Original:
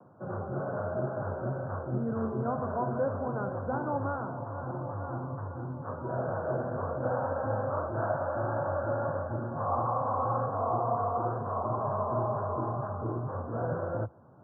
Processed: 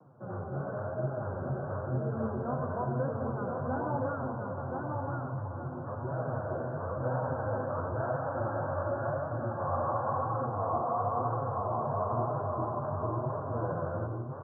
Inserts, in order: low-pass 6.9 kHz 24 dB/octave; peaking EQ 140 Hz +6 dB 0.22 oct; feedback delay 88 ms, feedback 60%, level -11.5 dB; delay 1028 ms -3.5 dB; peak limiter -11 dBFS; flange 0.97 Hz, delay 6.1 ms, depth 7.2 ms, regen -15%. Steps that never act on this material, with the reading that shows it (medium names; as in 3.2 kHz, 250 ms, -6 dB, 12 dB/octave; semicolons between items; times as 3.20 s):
low-pass 6.9 kHz: input has nothing above 1.7 kHz; peak limiter -11 dBFS: peak at its input -15.5 dBFS